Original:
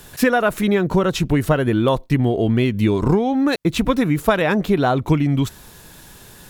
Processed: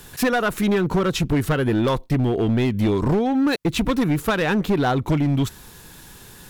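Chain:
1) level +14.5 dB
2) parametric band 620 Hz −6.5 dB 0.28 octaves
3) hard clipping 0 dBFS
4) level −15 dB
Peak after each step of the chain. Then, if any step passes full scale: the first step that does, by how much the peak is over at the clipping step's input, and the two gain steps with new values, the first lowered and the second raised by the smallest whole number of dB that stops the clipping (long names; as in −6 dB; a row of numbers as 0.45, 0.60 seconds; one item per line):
+10.5, +10.0, 0.0, −15.0 dBFS
step 1, 10.0 dB
step 1 +4.5 dB, step 4 −5 dB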